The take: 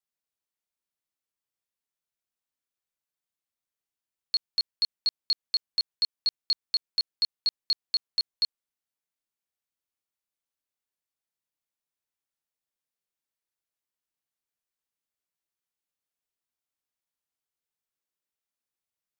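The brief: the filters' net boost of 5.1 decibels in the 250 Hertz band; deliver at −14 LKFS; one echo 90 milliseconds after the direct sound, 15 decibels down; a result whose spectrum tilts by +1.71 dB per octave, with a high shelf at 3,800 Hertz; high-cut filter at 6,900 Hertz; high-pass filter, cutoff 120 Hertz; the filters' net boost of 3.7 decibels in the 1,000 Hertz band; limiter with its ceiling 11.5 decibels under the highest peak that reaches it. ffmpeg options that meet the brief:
ffmpeg -i in.wav -af "highpass=120,lowpass=6900,equalizer=frequency=250:width_type=o:gain=7,equalizer=frequency=1000:width_type=o:gain=4,highshelf=frequency=3800:gain=4.5,alimiter=level_in=4dB:limit=-24dB:level=0:latency=1,volume=-4dB,aecho=1:1:90:0.178,volume=23dB" out.wav

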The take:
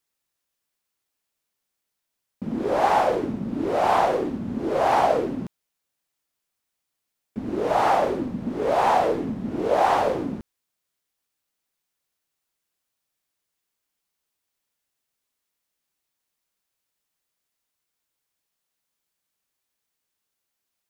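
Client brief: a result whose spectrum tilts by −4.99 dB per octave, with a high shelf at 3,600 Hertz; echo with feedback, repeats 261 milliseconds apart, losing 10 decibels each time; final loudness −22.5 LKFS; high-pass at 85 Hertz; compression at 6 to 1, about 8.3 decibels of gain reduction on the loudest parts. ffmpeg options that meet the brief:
ffmpeg -i in.wav -af "highpass=85,highshelf=frequency=3600:gain=5,acompressor=threshold=-24dB:ratio=6,aecho=1:1:261|522|783|1044:0.316|0.101|0.0324|0.0104,volume=6dB" out.wav

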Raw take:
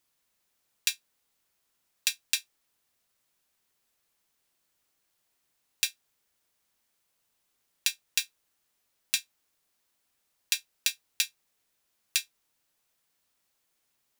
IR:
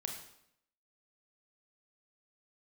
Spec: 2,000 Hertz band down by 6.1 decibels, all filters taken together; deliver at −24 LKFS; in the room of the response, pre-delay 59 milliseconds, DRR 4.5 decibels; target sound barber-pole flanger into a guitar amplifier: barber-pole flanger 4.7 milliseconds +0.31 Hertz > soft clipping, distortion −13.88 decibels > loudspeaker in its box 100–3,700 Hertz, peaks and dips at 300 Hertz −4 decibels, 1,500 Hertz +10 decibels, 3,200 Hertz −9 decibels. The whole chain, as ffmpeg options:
-filter_complex "[0:a]equalizer=frequency=2000:width_type=o:gain=-8.5,asplit=2[link_01][link_02];[1:a]atrim=start_sample=2205,adelay=59[link_03];[link_02][link_03]afir=irnorm=-1:irlink=0,volume=-4dB[link_04];[link_01][link_04]amix=inputs=2:normalize=0,asplit=2[link_05][link_06];[link_06]adelay=4.7,afreqshift=0.31[link_07];[link_05][link_07]amix=inputs=2:normalize=1,asoftclip=threshold=-18dB,highpass=100,equalizer=frequency=300:width_type=q:width=4:gain=-4,equalizer=frequency=1500:width_type=q:width=4:gain=10,equalizer=frequency=3200:width_type=q:width=4:gain=-9,lowpass=frequency=3700:width=0.5412,lowpass=frequency=3700:width=1.3066,volume=21.5dB"

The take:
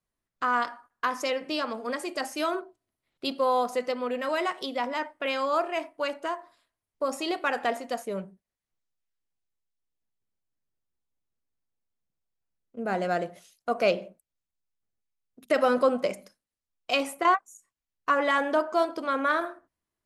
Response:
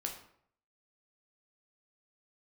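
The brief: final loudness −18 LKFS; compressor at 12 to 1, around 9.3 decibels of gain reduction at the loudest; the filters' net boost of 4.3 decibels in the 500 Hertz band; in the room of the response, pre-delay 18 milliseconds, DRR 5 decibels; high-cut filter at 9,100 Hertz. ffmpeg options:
-filter_complex "[0:a]lowpass=9100,equalizer=frequency=500:width_type=o:gain=5,acompressor=threshold=-23dB:ratio=12,asplit=2[link_01][link_02];[1:a]atrim=start_sample=2205,adelay=18[link_03];[link_02][link_03]afir=irnorm=-1:irlink=0,volume=-5dB[link_04];[link_01][link_04]amix=inputs=2:normalize=0,volume=10.5dB"

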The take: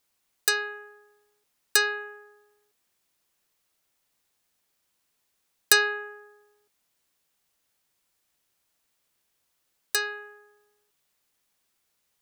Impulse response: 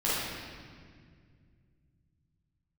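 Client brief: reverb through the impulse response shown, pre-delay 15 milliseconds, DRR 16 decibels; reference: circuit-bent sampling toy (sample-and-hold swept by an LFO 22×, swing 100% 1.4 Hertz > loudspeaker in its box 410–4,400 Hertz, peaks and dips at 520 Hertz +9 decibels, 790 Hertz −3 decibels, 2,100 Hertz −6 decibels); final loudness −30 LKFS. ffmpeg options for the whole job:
-filter_complex "[0:a]asplit=2[link_01][link_02];[1:a]atrim=start_sample=2205,adelay=15[link_03];[link_02][link_03]afir=irnorm=-1:irlink=0,volume=-27dB[link_04];[link_01][link_04]amix=inputs=2:normalize=0,acrusher=samples=22:mix=1:aa=0.000001:lfo=1:lforange=22:lforate=1.4,highpass=410,equalizer=frequency=520:width_type=q:width=4:gain=9,equalizer=frequency=790:width_type=q:width=4:gain=-3,equalizer=frequency=2100:width_type=q:width=4:gain=-6,lowpass=frequency=4400:width=0.5412,lowpass=frequency=4400:width=1.3066,volume=-0.5dB"

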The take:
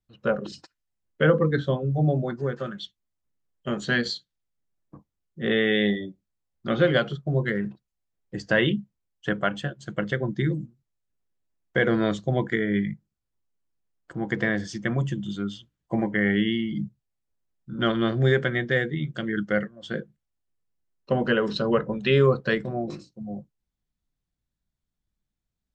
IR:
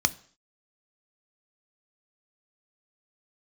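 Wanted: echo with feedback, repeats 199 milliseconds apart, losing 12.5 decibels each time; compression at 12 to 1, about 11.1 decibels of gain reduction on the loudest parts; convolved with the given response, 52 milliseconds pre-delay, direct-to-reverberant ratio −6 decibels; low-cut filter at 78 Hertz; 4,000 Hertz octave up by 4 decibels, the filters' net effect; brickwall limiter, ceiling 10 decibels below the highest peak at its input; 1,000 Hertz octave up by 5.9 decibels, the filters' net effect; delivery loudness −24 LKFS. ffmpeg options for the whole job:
-filter_complex "[0:a]highpass=78,equalizer=frequency=1000:width_type=o:gain=8,equalizer=frequency=4000:width_type=o:gain=4.5,acompressor=threshold=-24dB:ratio=12,alimiter=limit=-19.5dB:level=0:latency=1,aecho=1:1:199|398|597:0.237|0.0569|0.0137,asplit=2[link_01][link_02];[1:a]atrim=start_sample=2205,adelay=52[link_03];[link_02][link_03]afir=irnorm=-1:irlink=0,volume=-4dB[link_04];[link_01][link_04]amix=inputs=2:normalize=0,volume=0.5dB"

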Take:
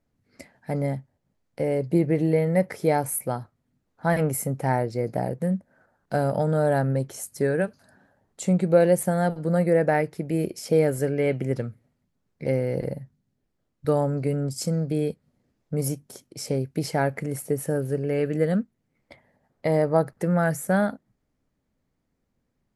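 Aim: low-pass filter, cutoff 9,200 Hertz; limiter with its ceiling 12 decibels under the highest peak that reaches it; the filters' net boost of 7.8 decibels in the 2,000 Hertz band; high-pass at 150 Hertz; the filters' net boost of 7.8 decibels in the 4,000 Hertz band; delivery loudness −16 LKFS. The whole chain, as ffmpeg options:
ffmpeg -i in.wav -af "highpass=150,lowpass=9200,equalizer=frequency=2000:width_type=o:gain=8,equalizer=frequency=4000:width_type=o:gain=9,volume=12.5dB,alimiter=limit=-4dB:level=0:latency=1" out.wav

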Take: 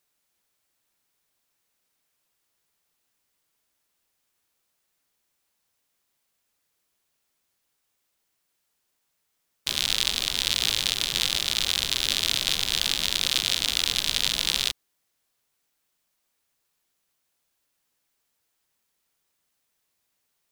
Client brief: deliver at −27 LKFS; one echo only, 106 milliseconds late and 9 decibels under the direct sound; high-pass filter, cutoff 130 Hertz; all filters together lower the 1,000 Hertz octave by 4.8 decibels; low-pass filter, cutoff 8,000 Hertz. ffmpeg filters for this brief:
ffmpeg -i in.wav -af "highpass=130,lowpass=8000,equalizer=frequency=1000:width_type=o:gain=-6.5,aecho=1:1:106:0.355,volume=-3.5dB" out.wav

